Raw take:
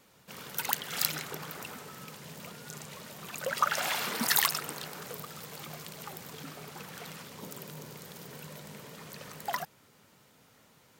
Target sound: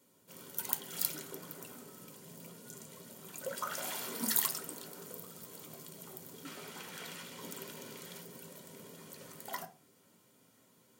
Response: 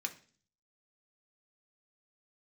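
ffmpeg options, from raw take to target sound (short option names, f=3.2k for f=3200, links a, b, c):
-filter_complex "[0:a]asetnsamples=n=441:p=0,asendcmd='6.45 equalizer g -2;8.21 equalizer g -11',equalizer=f=2.3k:w=0.44:g=-15[a];[1:a]atrim=start_sample=2205,asetrate=57330,aresample=44100[b];[a][b]afir=irnorm=-1:irlink=0,volume=3dB"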